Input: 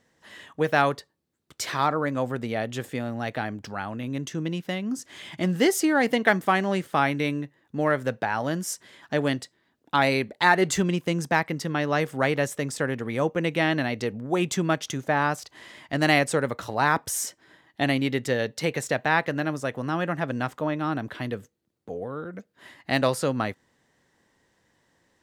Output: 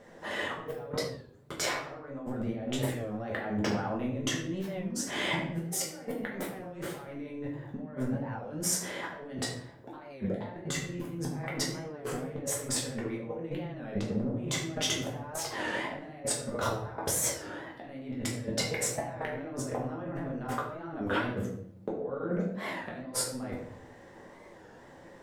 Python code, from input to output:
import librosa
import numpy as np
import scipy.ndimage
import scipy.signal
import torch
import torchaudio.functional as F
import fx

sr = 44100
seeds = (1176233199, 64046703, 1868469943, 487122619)

y = fx.curve_eq(x, sr, hz=(200.0, 550.0, 4300.0), db=(0, 8, -6))
y = fx.over_compress(y, sr, threshold_db=-38.0, ratio=-1.0)
y = fx.room_shoebox(y, sr, seeds[0], volume_m3=120.0, walls='mixed', distance_m=1.3)
y = fx.record_warp(y, sr, rpm=33.33, depth_cents=160.0)
y = F.gain(torch.from_numpy(y), -5.5).numpy()